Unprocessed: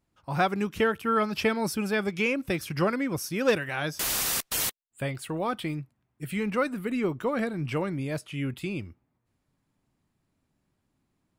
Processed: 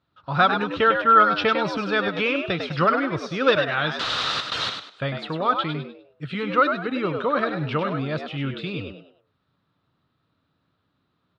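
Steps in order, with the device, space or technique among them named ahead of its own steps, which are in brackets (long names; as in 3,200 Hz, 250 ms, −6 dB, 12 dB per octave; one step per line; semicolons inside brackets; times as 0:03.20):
frequency-shifting delay pedal into a guitar cabinet (echo with shifted repeats 100 ms, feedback 31%, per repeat +87 Hz, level −6.5 dB; loudspeaker in its box 87–4,100 Hz, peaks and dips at 220 Hz −7 dB, 360 Hz −6 dB, 810 Hz −3 dB, 1,300 Hz +9 dB, 2,200 Hz −5 dB, 3,800 Hz +9 dB)
level +5 dB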